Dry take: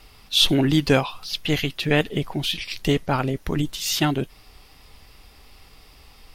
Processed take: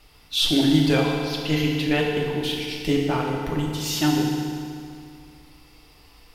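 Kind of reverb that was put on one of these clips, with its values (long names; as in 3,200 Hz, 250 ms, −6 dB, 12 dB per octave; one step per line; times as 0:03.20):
feedback delay network reverb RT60 2.4 s, low-frequency decay 1×, high-frequency decay 0.85×, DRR −1.5 dB
level −5.5 dB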